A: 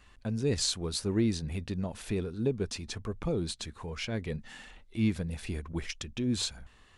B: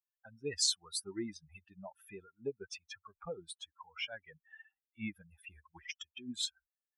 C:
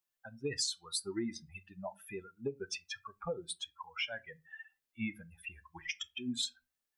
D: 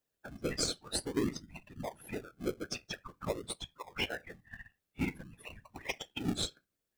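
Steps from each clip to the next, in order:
expander on every frequency bin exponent 3; high-pass 1.1 kHz 6 dB/octave; trim +4 dB
on a send at -12.5 dB: reverberation RT60 0.25 s, pre-delay 4 ms; on the sum: compression 10:1, threshold -38 dBFS, peak gain reduction 12.5 dB; trim +6 dB
whisper effect; in parallel at -4 dB: decimation with a swept rate 37×, swing 60% 0.49 Hz

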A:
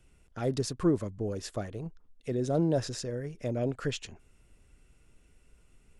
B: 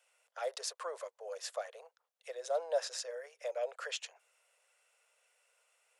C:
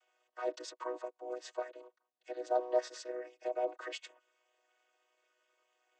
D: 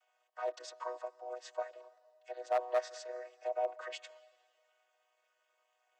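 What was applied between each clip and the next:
steep high-pass 500 Hz 72 dB/octave; trim -1 dB
vocoder on a held chord major triad, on B3; trim +2.5 dB
one-sided wavefolder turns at -25 dBFS; ladder high-pass 530 Hz, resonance 35%; on a send at -21 dB: reverberation RT60 2.0 s, pre-delay 105 ms; on the sum: trim +5.5 dB

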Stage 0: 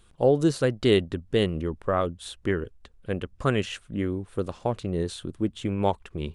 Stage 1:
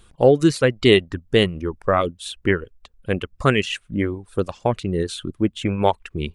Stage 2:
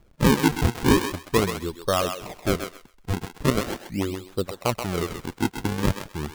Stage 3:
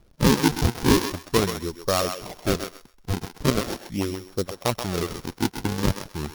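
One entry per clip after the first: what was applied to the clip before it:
reverb removal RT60 1.1 s; dynamic bell 2.3 kHz, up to +6 dB, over -48 dBFS, Q 1.5; trim +6.5 dB
decimation with a swept rate 42×, swing 160% 0.41 Hz; thinning echo 130 ms, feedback 22%, high-pass 660 Hz, level -6 dB; trim -4.5 dB
sorted samples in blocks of 8 samples

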